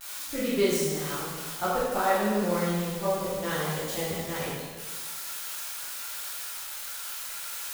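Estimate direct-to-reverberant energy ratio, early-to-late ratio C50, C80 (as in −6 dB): −8.5 dB, −1.5 dB, 1.0 dB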